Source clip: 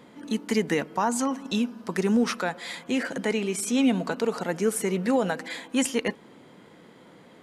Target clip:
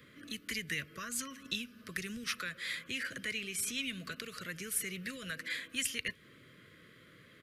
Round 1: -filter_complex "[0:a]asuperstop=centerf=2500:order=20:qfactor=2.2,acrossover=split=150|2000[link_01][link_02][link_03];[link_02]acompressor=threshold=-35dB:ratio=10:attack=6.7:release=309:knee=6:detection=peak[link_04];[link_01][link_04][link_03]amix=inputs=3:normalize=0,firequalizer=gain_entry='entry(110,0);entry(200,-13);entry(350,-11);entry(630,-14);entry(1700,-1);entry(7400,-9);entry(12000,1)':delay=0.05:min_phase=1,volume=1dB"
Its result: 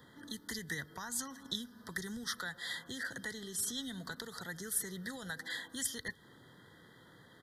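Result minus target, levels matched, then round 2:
1,000 Hz band +3.0 dB
-filter_complex "[0:a]asuperstop=centerf=830:order=20:qfactor=2.2,acrossover=split=150|2000[link_01][link_02][link_03];[link_02]acompressor=threshold=-35dB:ratio=10:attack=6.7:release=309:knee=6:detection=peak[link_04];[link_01][link_04][link_03]amix=inputs=3:normalize=0,firequalizer=gain_entry='entry(110,0);entry(200,-13);entry(350,-11);entry(630,-14);entry(1700,-1);entry(7400,-9);entry(12000,1)':delay=0.05:min_phase=1,volume=1dB"

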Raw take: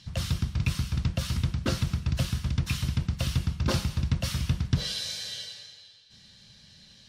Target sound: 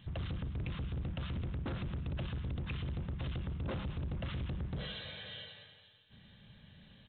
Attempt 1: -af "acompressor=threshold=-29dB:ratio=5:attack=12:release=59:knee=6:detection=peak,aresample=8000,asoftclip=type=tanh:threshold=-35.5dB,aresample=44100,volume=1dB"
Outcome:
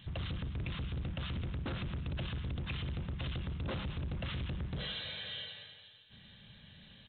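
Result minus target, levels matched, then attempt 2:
4,000 Hz band +4.5 dB
-af "acompressor=threshold=-29dB:ratio=5:attack=12:release=59:knee=6:detection=peak,highshelf=frequency=2100:gain=-8.5,aresample=8000,asoftclip=type=tanh:threshold=-35.5dB,aresample=44100,volume=1dB"

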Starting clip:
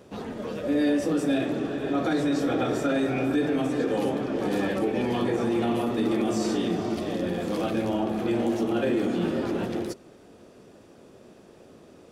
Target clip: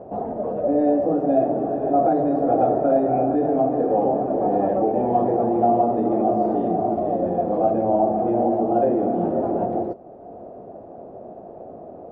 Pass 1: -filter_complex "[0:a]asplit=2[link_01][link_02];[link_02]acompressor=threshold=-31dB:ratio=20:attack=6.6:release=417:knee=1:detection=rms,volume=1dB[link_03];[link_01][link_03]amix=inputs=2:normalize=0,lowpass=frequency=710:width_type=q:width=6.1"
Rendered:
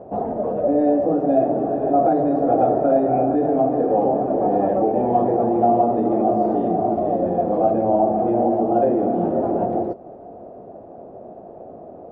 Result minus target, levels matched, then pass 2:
downward compressor: peak gain reduction −9.5 dB
-filter_complex "[0:a]asplit=2[link_01][link_02];[link_02]acompressor=threshold=-41dB:ratio=20:attack=6.6:release=417:knee=1:detection=rms,volume=1dB[link_03];[link_01][link_03]amix=inputs=2:normalize=0,lowpass=frequency=710:width_type=q:width=6.1"

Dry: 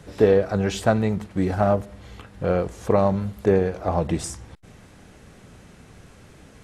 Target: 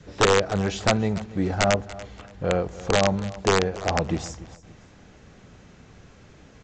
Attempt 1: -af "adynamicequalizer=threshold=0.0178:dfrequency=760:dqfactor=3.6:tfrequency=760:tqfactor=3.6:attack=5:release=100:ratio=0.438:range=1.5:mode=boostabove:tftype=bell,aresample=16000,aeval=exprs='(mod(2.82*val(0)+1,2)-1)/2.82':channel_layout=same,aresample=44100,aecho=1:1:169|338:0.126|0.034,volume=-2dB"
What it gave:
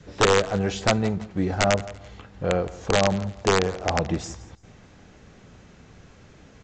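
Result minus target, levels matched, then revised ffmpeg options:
echo 118 ms early
-af "adynamicequalizer=threshold=0.0178:dfrequency=760:dqfactor=3.6:tfrequency=760:tqfactor=3.6:attack=5:release=100:ratio=0.438:range=1.5:mode=boostabove:tftype=bell,aresample=16000,aeval=exprs='(mod(2.82*val(0)+1,2)-1)/2.82':channel_layout=same,aresample=44100,aecho=1:1:287|574:0.126|0.034,volume=-2dB"

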